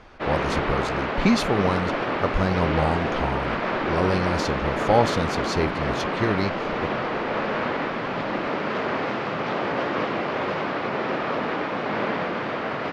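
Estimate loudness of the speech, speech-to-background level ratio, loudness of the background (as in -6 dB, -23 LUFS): -26.5 LUFS, -0.5 dB, -26.0 LUFS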